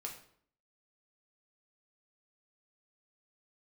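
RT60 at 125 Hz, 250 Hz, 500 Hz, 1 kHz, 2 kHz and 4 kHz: 0.65, 0.70, 0.60, 0.55, 0.50, 0.45 s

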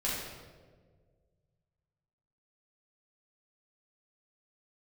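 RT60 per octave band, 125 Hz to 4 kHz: 2.7, 1.9, 2.0, 1.3, 1.0, 0.90 s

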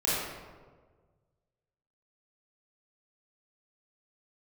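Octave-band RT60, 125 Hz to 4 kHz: 2.2, 1.6, 1.7, 1.3, 1.0, 0.80 s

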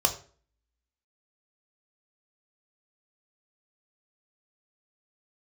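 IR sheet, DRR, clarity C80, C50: 3.5 dB, 16.0 dB, 12.0 dB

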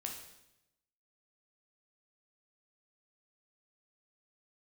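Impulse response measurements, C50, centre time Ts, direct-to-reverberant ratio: 5.0 dB, 32 ms, 1.0 dB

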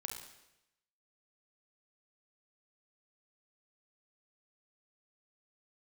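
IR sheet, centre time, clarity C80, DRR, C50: 38 ms, 7.0 dB, 2.5 dB, 4.5 dB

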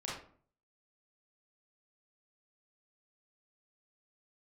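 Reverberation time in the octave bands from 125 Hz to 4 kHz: 0.65, 0.60, 0.50, 0.50, 0.40, 0.30 s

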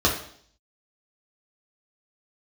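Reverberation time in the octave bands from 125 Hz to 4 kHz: 0.60, 0.65, 0.60, 0.55, 0.55, 0.65 s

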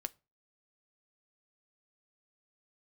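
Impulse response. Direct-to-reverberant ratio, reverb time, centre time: 10.0 dB, not exponential, 2 ms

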